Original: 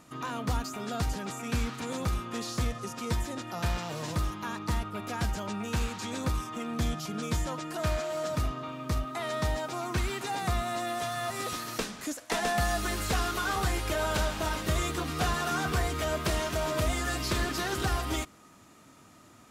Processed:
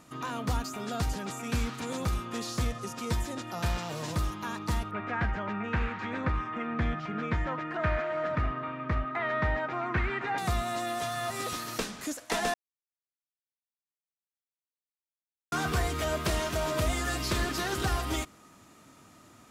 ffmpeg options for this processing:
-filter_complex "[0:a]asettb=1/sr,asplit=3[a][b][c];[a]atrim=end=4.914[d];[b]atrim=start=4.91:end=10.38,asetpts=PTS-STARTPTS,afade=t=in:d=0.004:c=qsin,afade=t=out:st=5.466:d=0.004:c=qsin,lowpass=f=1.9k:t=q:w=2.4[e];[c]atrim=start=10.376[f];[d][e]acrossfade=d=0.004:c1=hsin:c2=qsin[g];[g][f]acrossfade=d=0.004:c1=qsin:c2=hsin,asplit=3[h][i][j];[h]atrim=end=12.54,asetpts=PTS-STARTPTS,afade=t=out:st=12.536:d=0.004:c=hsin[k];[i]atrim=start=12.54:end=15.52,asetpts=PTS-STARTPTS,volume=0[l];[j]atrim=start=15.52,asetpts=PTS-STARTPTS,afade=t=in:d=0.004:c=hsin[m];[k][l][m]concat=n=3:v=0:a=1"

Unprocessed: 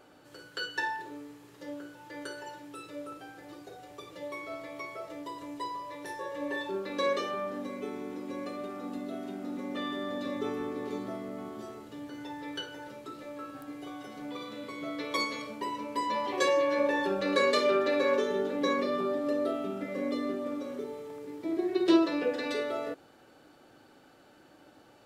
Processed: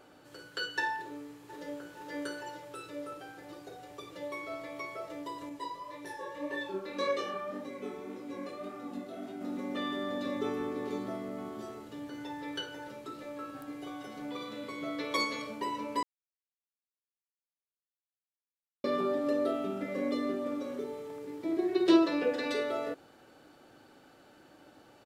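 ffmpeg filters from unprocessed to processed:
-filter_complex "[0:a]asplit=2[a][b];[b]afade=t=in:st=1.02:d=0.01,afade=t=out:st=1.94:d=0.01,aecho=0:1:470|940|1410|1880|2350|2820|3290|3760|4230:0.794328|0.476597|0.285958|0.171575|0.102945|0.061767|0.0370602|0.0222361|0.0133417[c];[a][c]amix=inputs=2:normalize=0,asettb=1/sr,asplit=3[d][e][f];[d]atrim=end=5.494[g];[e]atrim=start=5.49:end=9.41,asetpts=PTS-STARTPTS,afade=t=in:d=0.004:c=qsin,afade=t=out:st=3.916:d=0.004:c=qsin,flanger=delay=17.5:depth=5.2:speed=1.8[h];[f]atrim=start=9.406[i];[g][h]acrossfade=d=0.004:c1=hsin:c2=qsin[j];[j][i]acrossfade=d=0.004:c1=qsin:c2=hsin,asplit=3[k][l][m];[k]atrim=end=16.03,asetpts=PTS-STARTPTS,afade=t=out:st=16.026:d=0.004:c=hsin[n];[l]atrim=start=16.03:end=18.84,asetpts=PTS-STARTPTS,volume=0[o];[m]atrim=start=18.84,asetpts=PTS-STARTPTS,afade=t=in:d=0.004:c=hsin[p];[n][o][p]concat=n=3:v=0:a=1"

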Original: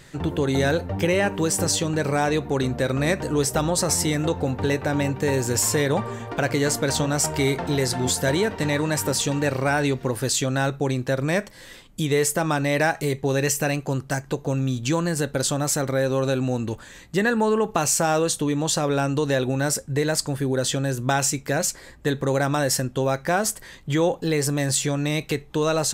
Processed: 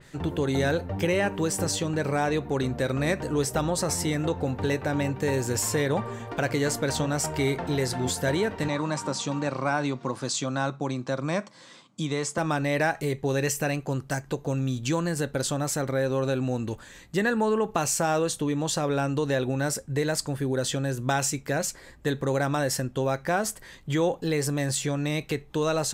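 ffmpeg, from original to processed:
-filter_complex "[0:a]asettb=1/sr,asplit=3[a][b][c];[a]atrim=end=8.684[d];[b]atrim=start=8.68:end=12.38,asetpts=PTS-STARTPTS,afade=t=in:d=0.004:c=qsin,afade=t=out:st=3.696:d=0.004:c=qsin,highpass=f=140:w=0.5412,highpass=f=140:w=1.3066,equalizer=f=430:t=q:w=4:g=-7,equalizer=f=1.1k:t=q:w=4:g=7,equalizer=f=1.8k:t=q:w=4:g=-7,equalizer=f=2.8k:t=q:w=4:g=-4,lowpass=f=7.7k:w=0.5412,lowpass=f=7.7k:w=1.3066[e];[c]atrim=start=12.376[f];[d][e]acrossfade=d=0.004:c1=hsin:c2=qsin[g];[g][f]acrossfade=d=0.004:c1=qsin:c2=hsin,adynamicequalizer=threshold=0.0126:dfrequency=3400:dqfactor=0.7:tfrequency=3400:tqfactor=0.7:attack=5:release=100:ratio=0.375:range=2:mode=cutabove:tftype=highshelf,volume=-3.5dB"

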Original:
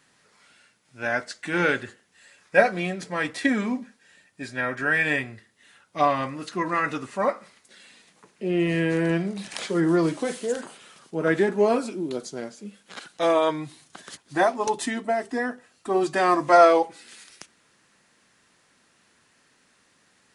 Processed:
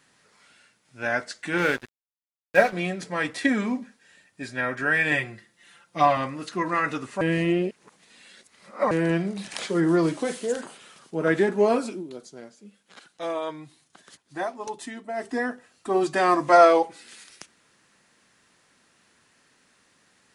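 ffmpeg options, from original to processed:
-filter_complex "[0:a]asettb=1/sr,asplit=3[a][b][c];[a]atrim=end=1.584[d];[b]atrim=start=1.58:end=2.73,asetpts=PTS-STARTPTS,afade=t=in:d=0.004:c=qsin,afade=t=out:st=1.146:d=0.004:c=qsin,aeval=exprs='sgn(val(0))*max(abs(val(0))-0.0158,0)':c=same[e];[c]atrim=start=2.726[f];[d][e]acrossfade=d=0.004:c1=hsin:c2=qsin[g];[g][f]acrossfade=d=0.004:c1=qsin:c2=hsin,asettb=1/sr,asplit=3[h][i][j];[h]atrim=end=5.114[k];[i]atrim=start=5.11:end=6.17,asetpts=PTS-STARTPTS,afade=t=in:d=0.004:c=qsin,afade=t=out:st=1.056:d=0.004:c=qsin,aecho=1:1:5.8:0.71,atrim=end_sample=46746[l];[j]atrim=start=6.166[m];[k][l]acrossfade=d=0.004:c1=hsin:c2=qsin[n];[n][m]acrossfade=d=0.004:c1=qsin:c2=hsin,asplit=5[o][p][q][r][s];[o]atrim=end=7.212[t];[p]atrim=start=7.208:end=8.912,asetpts=PTS-STARTPTS,areverse[u];[q]atrim=start=8.908:end=12.04,asetpts=PTS-STARTPTS,afade=t=out:st=2.992:d=0.14:c=qsin:silence=0.354813[v];[r]atrim=start=12.04:end=15.13,asetpts=PTS-STARTPTS,volume=-9dB[w];[s]atrim=start=15.13,asetpts=PTS-STARTPTS,afade=t=in:d=0.14:c=qsin:silence=0.354813[x];[t][u]acrossfade=d=0.004:c1=hsin:c2=hsin[y];[v][w][x]concat=n=3:v=0:a=1[z];[y][z]acrossfade=d=0.004:c1=hsin:c2=hsin"

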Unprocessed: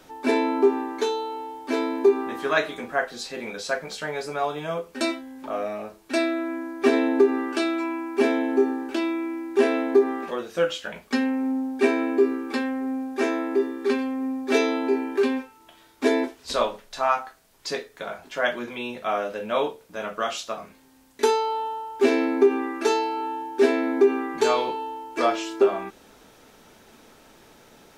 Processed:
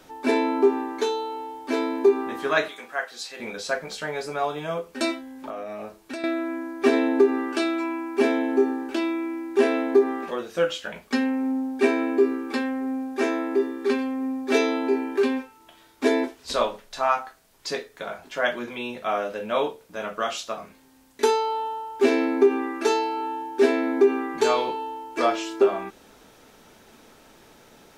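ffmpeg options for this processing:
-filter_complex "[0:a]asettb=1/sr,asplit=3[a][b][c];[a]atrim=end=2.684[d];[b]atrim=start=2.68:end=3.4,asetpts=PTS-STARTPTS,afade=t=in:d=0.004:c=qsin,afade=t=out:st=0.716:d=0.004:c=qsin,highpass=f=1.2k:p=1[e];[c]atrim=start=3.396[f];[d][e]acrossfade=d=0.004:c1=hsin:c2=qsin[g];[g][f]acrossfade=d=0.004:c1=qsin:c2=hsin,asettb=1/sr,asplit=3[h][i][j];[h]atrim=end=5.504[k];[i]atrim=start=5.5:end=6.24,asetpts=PTS-STARTPTS,afade=t=in:d=0.004:c=qsin,afade=t=out:st=0.736:d=0.004:c=qsin,acompressor=threshold=-30dB:ratio=6:attack=3.2:release=140:knee=1:detection=peak[l];[j]atrim=start=6.236[m];[k][l]acrossfade=d=0.004:c1=hsin:c2=qsin[n];[n][m]acrossfade=d=0.004:c1=qsin:c2=hsin"

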